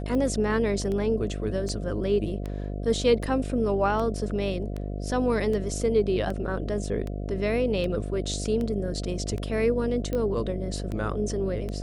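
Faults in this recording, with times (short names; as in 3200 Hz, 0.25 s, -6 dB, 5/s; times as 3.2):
buzz 50 Hz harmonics 14 -32 dBFS
tick 78 rpm -21 dBFS
10.13 pop -17 dBFS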